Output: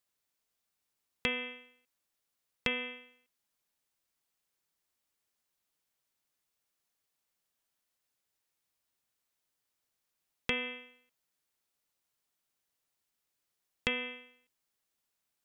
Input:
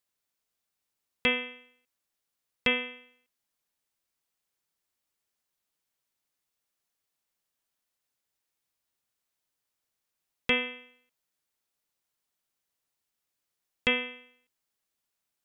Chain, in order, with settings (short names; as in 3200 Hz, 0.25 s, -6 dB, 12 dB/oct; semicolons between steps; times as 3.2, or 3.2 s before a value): compressor, threshold -29 dBFS, peak gain reduction 8.5 dB